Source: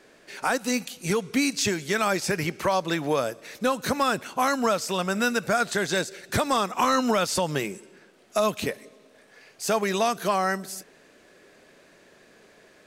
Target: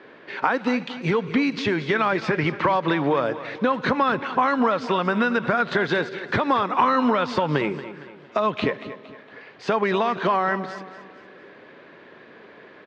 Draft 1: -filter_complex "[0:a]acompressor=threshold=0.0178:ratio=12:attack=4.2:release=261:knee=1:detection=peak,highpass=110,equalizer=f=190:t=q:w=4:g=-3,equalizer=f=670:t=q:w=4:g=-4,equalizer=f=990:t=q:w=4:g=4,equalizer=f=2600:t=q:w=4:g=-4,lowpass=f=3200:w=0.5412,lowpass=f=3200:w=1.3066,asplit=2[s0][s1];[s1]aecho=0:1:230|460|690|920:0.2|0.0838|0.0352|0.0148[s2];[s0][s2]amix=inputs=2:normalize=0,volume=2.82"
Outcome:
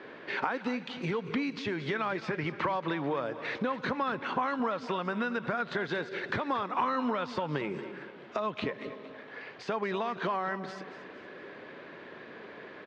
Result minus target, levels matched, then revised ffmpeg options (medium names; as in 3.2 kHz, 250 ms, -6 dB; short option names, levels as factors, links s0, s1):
compression: peak gain reduction +10.5 dB
-filter_complex "[0:a]acompressor=threshold=0.0668:ratio=12:attack=4.2:release=261:knee=1:detection=peak,highpass=110,equalizer=f=190:t=q:w=4:g=-3,equalizer=f=670:t=q:w=4:g=-4,equalizer=f=990:t=q:w=4:g=4,equalizer=f=2600:t=q:w=4:g=-4,lowpass=f=3200:w=0.5412,lowpass=f=3200:w=1.3066,asplit=2[s0][s1];[s1]aecho=0:1:230|460|690|920:0.2|0.0838|0.0352|0.0148[s2];[s0][s2]amix=inputs=2:normalize=0,volume=2.82"